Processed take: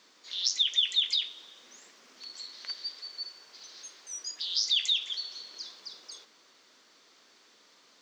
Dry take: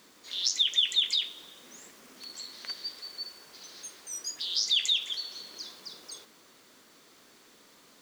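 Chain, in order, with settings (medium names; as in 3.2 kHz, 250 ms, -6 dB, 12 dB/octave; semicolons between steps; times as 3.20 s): high-pass 470 Hz 6 dB/octave; resonant high shelf 7.9 kHz -13 dB, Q 1.5; trim -2.5 dB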